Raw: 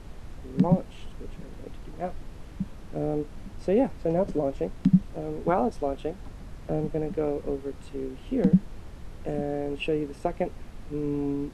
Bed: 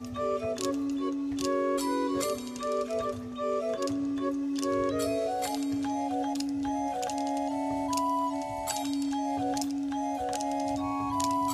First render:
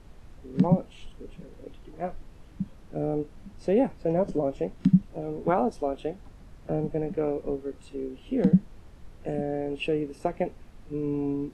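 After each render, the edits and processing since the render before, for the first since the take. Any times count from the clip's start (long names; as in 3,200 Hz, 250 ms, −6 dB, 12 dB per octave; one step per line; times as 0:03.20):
noise reduction from a noise print 7 dB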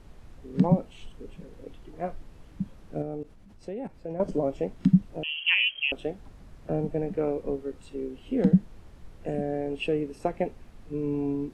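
0:03.02–0:04.20: output level in coarse steps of 17 dB
0:05.23–0:05.92: voice inversion scrambler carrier 3,200 Hz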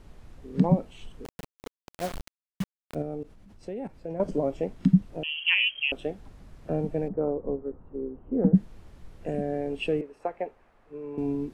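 0:01.25–0:02.95: bit-depth reduction 6 bits, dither none
0:07.08–0:08.55: low-pass filter 1,200 Hz 24 dB per octave
0:10.01–0:11.18: three-way crossover with the lows and the highs turned down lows −17 dB, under 450 Hz, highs −15 dB, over 2,200 Hz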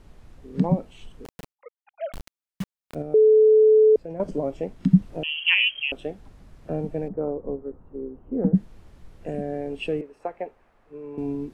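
0:01.53–0:02.13: three sine waves on the formant tracks
0:03.14–0:03.96: beep over 433 Hz −11.5 dBFS
0:04.91–0:05.82: clip gain +3.5 dB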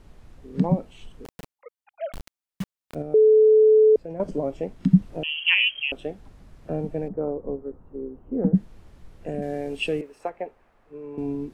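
0:09.42–0:10.30: high-shelf EQ 2,600 Hz +11 dB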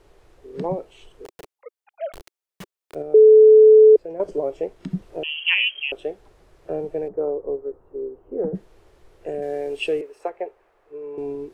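low shelf with overshoot 300 Hz −7.5 dB, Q 3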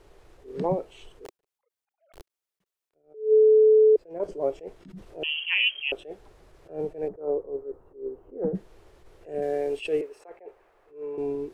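brickwall limiter −13 dBFS, peak gain reduction 7 dB
level that may rise only so fast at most 170 dB per second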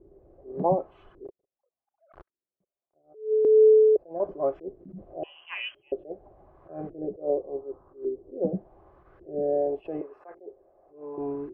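notch comb filter 460 Hz
auto-filter low-pass saw up 0.87 Hz 350–1,500 Hz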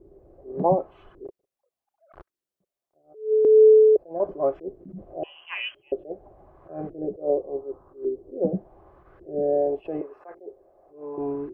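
level +3 dB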